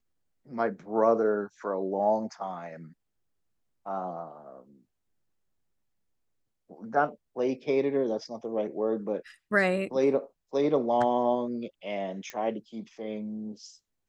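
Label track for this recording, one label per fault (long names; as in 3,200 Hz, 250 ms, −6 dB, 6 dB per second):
12.300000	12.300000	click −21 dBFS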